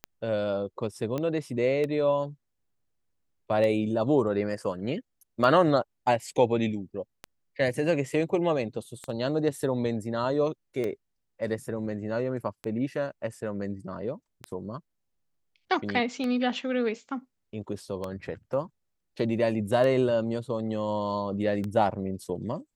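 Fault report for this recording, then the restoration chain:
tick 33 1/3 rpm -19 dBFS
1.18 s: pop -18 dBFS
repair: de-click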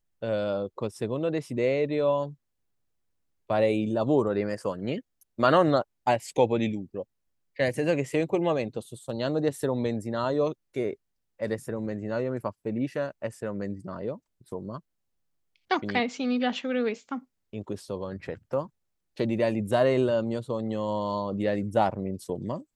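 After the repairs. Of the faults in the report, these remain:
nothing left

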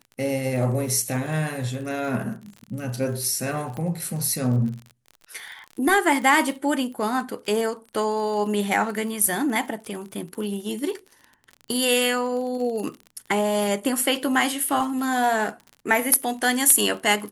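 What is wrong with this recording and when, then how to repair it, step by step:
crackle 41 per s -32 dBFS
3.77 s: pop -20 dBFS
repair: de-click

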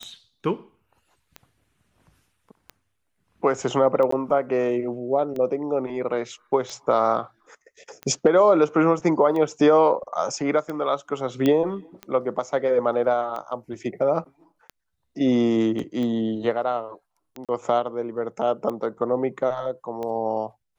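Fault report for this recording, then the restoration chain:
tick 45 rpm -20 dBFS
4.11–4.12 s: dropout 14 ms
11.46 s: pop -10 dBFS
15.79 s: dropout 3.1 ms
17.45–17.49 s: dropout 37 ms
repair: de-click; interpolate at 4.11 s, 14 ms; interpolate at 15.79 s, 3.1 ms; interpolate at 17.45 s, 37 ms

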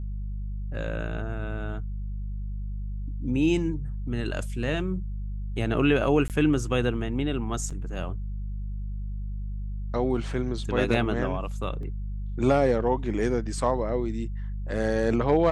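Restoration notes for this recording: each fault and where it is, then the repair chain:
hum 50 Hz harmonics 4 -32 dBFS
6.28–6.30 s: dropout 18 ms
7.70–7.71 s: dropout 5.7 ms
11.83 s: dropout 2.1 ms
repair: de-hum 50 Hz, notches 4; interpolate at 6.28 s, 18 ms; interpolate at 7.70 s, 5.7 ms; interpolate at 11.83 s, 2.1 ms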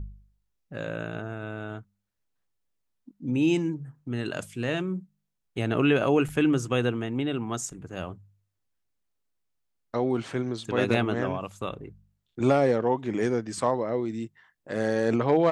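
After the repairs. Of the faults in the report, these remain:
nothing left

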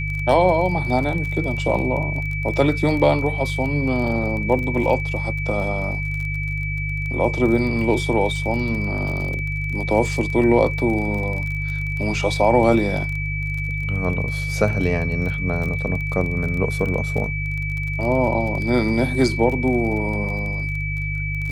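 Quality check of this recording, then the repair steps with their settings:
crackle 26 per s -27 dBFS
hum 50 Hz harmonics 3 -26 dBFS
whine 2.3 kHz -27 dBFS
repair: de-click; band-stop 2.3 kHz, Q 30; de-hum 50 Hz, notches 3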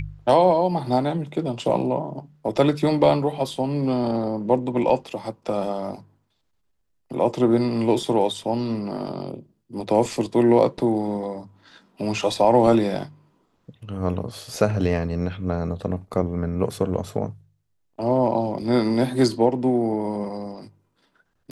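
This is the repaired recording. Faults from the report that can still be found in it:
nothing left

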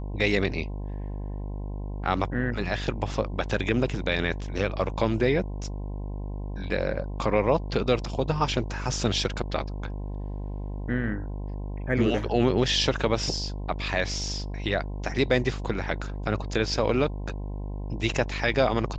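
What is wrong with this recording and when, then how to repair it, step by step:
buzz 50 Hz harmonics 21 -33 dBFS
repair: de-hum 50 Hz, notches 21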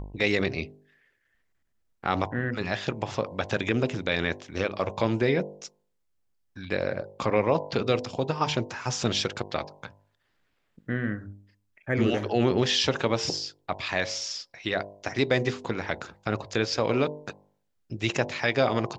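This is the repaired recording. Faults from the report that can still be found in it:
nothing left

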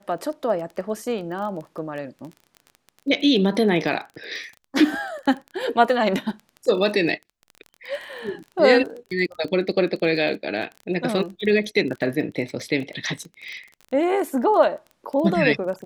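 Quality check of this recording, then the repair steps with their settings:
crackle 21 per s -31 dBFS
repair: de-click

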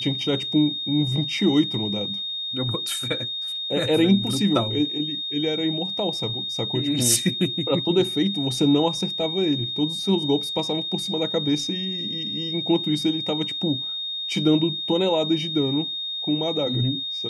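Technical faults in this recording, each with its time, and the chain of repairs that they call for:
whine 3.7 kHz -27 dBFS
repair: band-stop 3.7 kHz, Q 30

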